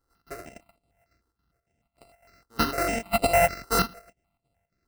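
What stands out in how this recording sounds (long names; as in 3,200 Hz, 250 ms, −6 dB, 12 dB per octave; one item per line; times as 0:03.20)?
a buzz of ramps at a fixed pitch in blocks of 64 samples
chopped level 3.6 Hz, depth 65%, duty 75%
aliases and images of a low sample rate 3,400 Hz, jitter 0%
notches that jump at a steady rate 6.6 Hz 650–5,900 Hz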